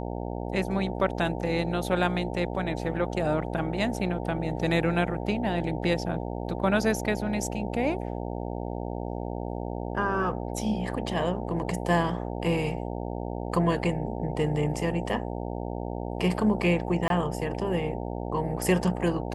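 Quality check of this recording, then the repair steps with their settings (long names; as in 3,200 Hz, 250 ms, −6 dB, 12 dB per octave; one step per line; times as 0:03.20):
mains buzz 60 Hz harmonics 15 −33 dBFS
0:17.08–0:17.10: drop-out 22 ms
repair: hum removal 60 Hz, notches 15
repair the gap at 0:17.08, 22 ms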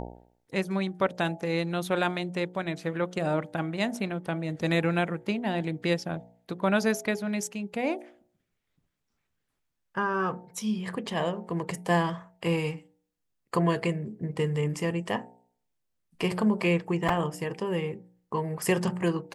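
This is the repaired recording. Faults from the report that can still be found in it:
none of them is left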